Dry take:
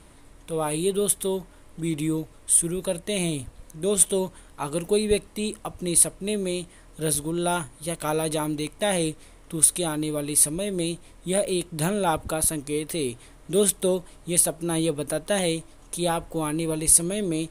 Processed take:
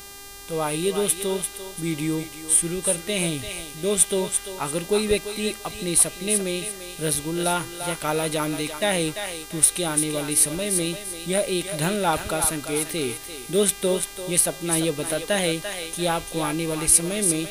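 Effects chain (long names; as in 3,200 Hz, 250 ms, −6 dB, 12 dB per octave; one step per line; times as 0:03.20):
feedback echo with a high-pass in the loop 342 ms, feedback 34%, high-pass 730 Hz, level −6 dB
hum with harmonics 400 Hz, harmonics 36, −42 dBFS −1 dB per octave
dynamic equaliser 2,200 Hz, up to +5 dB, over −40 dBFS, Q 0.78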